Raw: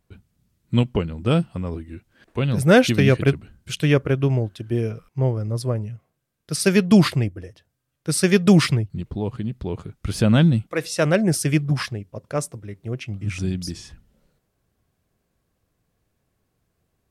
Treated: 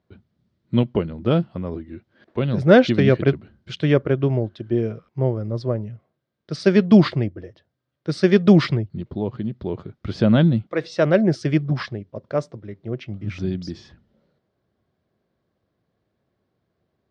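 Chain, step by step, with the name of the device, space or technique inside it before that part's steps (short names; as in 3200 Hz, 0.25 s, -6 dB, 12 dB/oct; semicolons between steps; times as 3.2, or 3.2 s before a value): guitar cabinet (speaker cabinet 88–4500 Hz, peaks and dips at 220 Hz +3 dB, 360 Hz +5 dB, 600 Hz +5 dB, 2600 Hz -6 dB); gain -1 dB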